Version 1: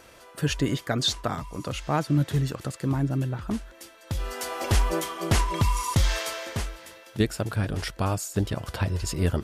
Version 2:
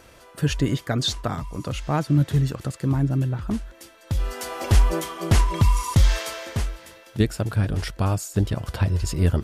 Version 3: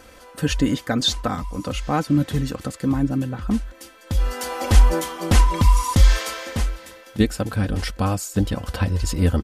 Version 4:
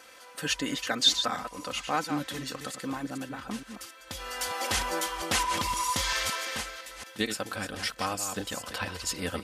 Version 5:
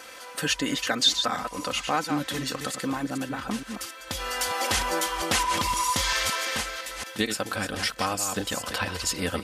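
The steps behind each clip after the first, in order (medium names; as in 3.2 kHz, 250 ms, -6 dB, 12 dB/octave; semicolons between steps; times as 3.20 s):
bass shelf 190 Hz +7 dB
comb 3.9 ms, depth 57%; trim +2 dB
chunks repeated in reverse 227 ms, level -8 dB; high-pass 1.3 kHz 6 dB/octave; treble shelf 10 kHz -4.5 dB
compression 1.5:1, threshold -38 dBFS, peak gain reduction 8 dB; trim +8 dB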